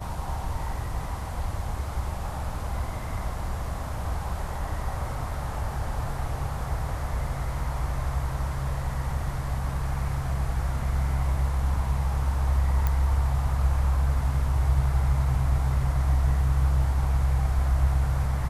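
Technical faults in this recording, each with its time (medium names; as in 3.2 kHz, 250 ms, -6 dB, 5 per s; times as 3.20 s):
12.87 s: pop -13 dBFS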